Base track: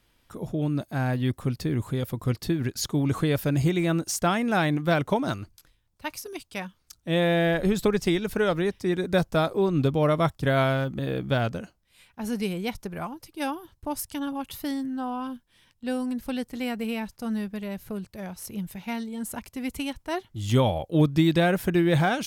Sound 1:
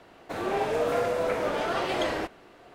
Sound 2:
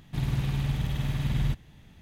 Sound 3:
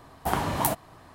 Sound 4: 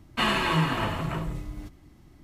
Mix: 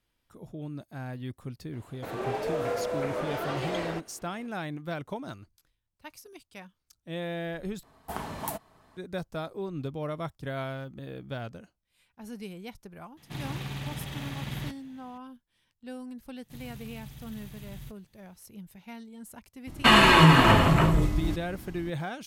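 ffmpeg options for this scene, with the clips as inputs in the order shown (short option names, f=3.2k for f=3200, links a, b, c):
-filter_complex "[2:a]asplit=2[a][b];[0:a]volume=-12dB[c];[1:a]equalizer=f=470:t=o:w=0.77:g=2[d];[3:a]aecho=1:1:4.6:0.31[e];[a]highpass=f=330:p=1[f];[b]aemphasis=mode=production:type=75fm[g];[4:a]alimiter=level_in=15dB:limit=-1dB:release=50:level=0:latency=1[h];[c]asplit=2[i][j];[i]atrim=end=7.834[k];[e]atrim=end=1.14,asetpts=PTS-STARTPTS,volume=-9.5dB[l];[j]atrim=start=8.966[m];[d]atrim=end=2.74,asetpts=PTS-STARTPTS,volume=-5.5dB,afade=t=in:d=0.004:c=hsin,afade=t=out:st=2.736:d=0.004:c=hsin,adelay=1730[n];[f]atrim=end=2.01,asetpts=PTS-STARTPTS,afade=t=in:d=0.004:c=hsin,afade=t=out:st=2.006:d=0.004:c=hsin,adelay=13170[o];[g]atrim=end=2.01,asetpts=PTS-STARTPTS,volume=-17dB,afade=t=in:d=0.004:c=hsin,afade=t=out:st=2.006:d=0.004:c=hsin,adelay=16370[p];[h]atrim=end=2.23,asetpts=PTS-STARTPTS,volume=-5.5dB,afade=t=in:d=0.004:c=hsin,afade=t=out:st=2.226:d=0.004:c=hsin,adelay=19670[q];[k][l]acrossfade=d=0.004:c1=hsin:c2=hsin[r];[r][m]acrossfade=d=0.004:c1=hsin:c2=hsin[s];[s][n][o][p][q]amix=inputs=5:normalize=0"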